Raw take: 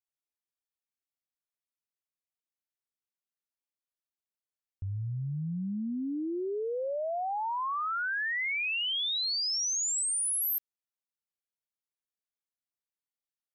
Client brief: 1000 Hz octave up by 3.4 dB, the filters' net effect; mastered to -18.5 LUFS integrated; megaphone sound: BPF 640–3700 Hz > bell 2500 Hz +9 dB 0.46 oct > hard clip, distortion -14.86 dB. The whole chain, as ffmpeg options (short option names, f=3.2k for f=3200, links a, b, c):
-af "highpass=640,lowpass=3.7k,equalizer=f=1k:t=o:g=5,equalizer=f=2.5k:t=o:w=0.46:g=9,asoftclip=type=hard:threshold=-25.5dB,volume=10dB"